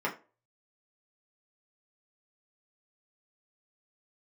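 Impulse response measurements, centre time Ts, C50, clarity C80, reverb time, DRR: 15 ms, 13.5 dB, 19.0 dB, 0.35 s, -4.0 dB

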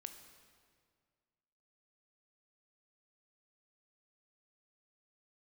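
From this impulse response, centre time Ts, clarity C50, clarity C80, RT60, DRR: 26 ms, 8.5 dB, 9.5 dB, 2.0 s, 7.0 dB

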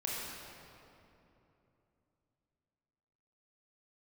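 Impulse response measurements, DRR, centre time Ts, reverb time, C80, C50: -5.0 dB, 0.157 s, 3.0 s, -1.0 dB, -2.5 dB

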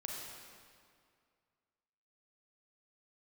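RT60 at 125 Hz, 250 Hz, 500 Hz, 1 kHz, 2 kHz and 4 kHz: 2.3, 2.2, 2.2, 2.2, 1.9, 1.7 s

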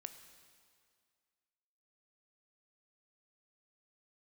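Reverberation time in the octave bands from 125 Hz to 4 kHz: 1.9, 2.0, 2.1, 2.1, 2.0, 1.9 s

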